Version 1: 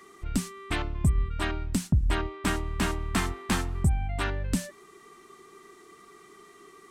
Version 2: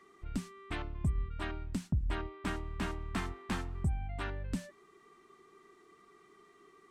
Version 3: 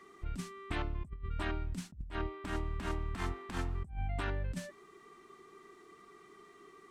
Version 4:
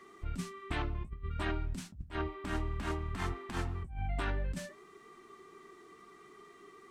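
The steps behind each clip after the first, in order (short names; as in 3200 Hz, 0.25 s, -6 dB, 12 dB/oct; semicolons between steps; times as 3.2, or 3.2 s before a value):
high shelf 6000 Hz -11.5 dB; gain -8.5 dB
negative-ratio compressor -37 dBFS, ratio -0.5; gain +1.5 dB
flange 0.58 Hz, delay 7.8 ms, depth 8.9 ms, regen -48%; gain +5.5 dB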